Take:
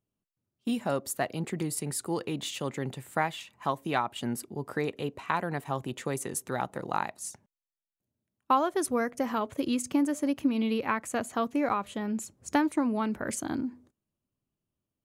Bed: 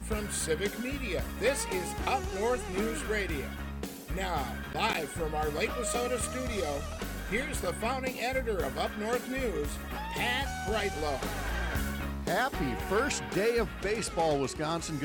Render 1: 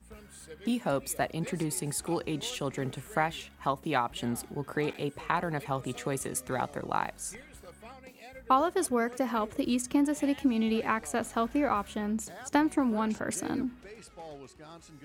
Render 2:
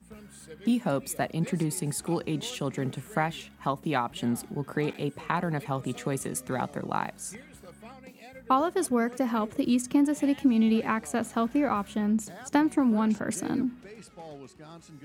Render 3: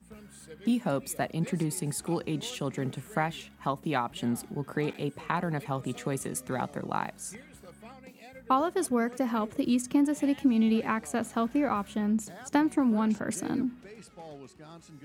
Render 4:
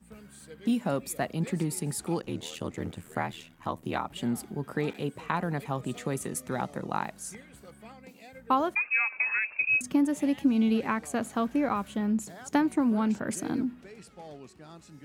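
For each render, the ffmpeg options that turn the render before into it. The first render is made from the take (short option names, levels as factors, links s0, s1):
-filter_complex "[1:a]volume=0.141[s0];[0:a][s0]amix=inputs=2:normalize=0"
-af "highpass=73,equalizer=f=190:w=1.3:g=7"
-af "volume=0.841"
-filter_complex "[0:a]asplit=3[s0][s1][s2];[s0]afade=t=out:st=2.21:d=0.02[s3];[s1]aeval=exprs='val(0)*sin(2*PI*40*n/s)':c=same,afade=t=in:st=2.21:d=0.02,afade=t=out:st=4.09:d=0.02[s4];[s2]afade=t=in:st=4.09:d=0.02[s5];[s3][s4][s5]amix=inputs=3:normalize=0,asettb=1/sr,asplit=3[s6][s7][s8];[s6]atrim=end=8.754[s9];[s7]atrim=start=8.75:end=9.81,asetpts=PTS-STARTPTS,afade=t=in:d=0.004:c=qsin,afade=t=out:st=1.056:d=0.004:c=qsin,lowpass=f=2400:t=q:w=0.5098,lowpass=f=2400:t=q:w=0.6013,lowpass=f=2400:t=q:w=0.9,lowpass=f=2400:t=q:w=2.563,afreqshift=-2800[s10];[s8]atrim=start=9.806[s11];[s9][s10]acrossfade=d=0.004:c1=hsin:c2=qsin[s12];[s12][s11]acrossfade=d=0.004:c1=qsin:c2=hsin"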